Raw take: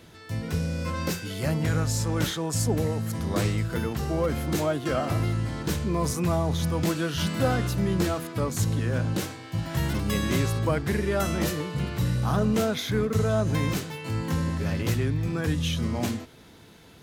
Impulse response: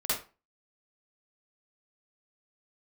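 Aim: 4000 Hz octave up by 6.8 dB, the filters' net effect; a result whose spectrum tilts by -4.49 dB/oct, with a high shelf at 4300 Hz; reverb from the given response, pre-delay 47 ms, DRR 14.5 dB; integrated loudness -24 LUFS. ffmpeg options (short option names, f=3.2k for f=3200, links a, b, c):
-filter_complex "[0:a]equalizer=f=4k:t=o:g=5,highshelf=f=4.3k:g=6.5,asplit=2[a][b];[1:a]atrim=start_sample=2205,adelay=47[c];[b][c]afir=irnorm=-1:irlink=0,volume=-22dB[d];[a][d]amix=inputs=2:normalize=0,volume=1.5dB"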